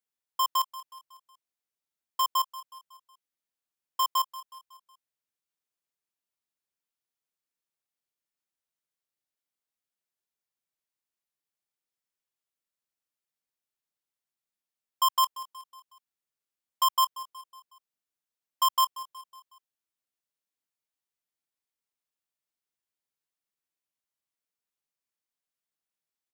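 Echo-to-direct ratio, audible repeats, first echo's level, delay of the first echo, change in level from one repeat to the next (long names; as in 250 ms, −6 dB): −15.5 dB, 4, −16.5 dB, 184 ms, −6.0 dB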